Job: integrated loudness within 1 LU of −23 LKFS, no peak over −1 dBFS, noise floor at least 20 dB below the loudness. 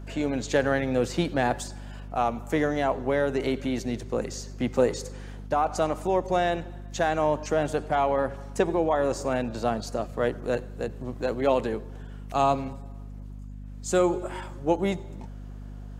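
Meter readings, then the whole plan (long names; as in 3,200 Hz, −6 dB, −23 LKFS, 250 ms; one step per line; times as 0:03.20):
mains hum 50 Hz; hum harmonics up to 250 Hz; level of the hum −37 dBFS; integrated loudness −27.0 LKFS; sample peak −9.5 dBFS; target loudness −23.0 LKFS
→ hum removal 50 Hz, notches 5
level +4 dB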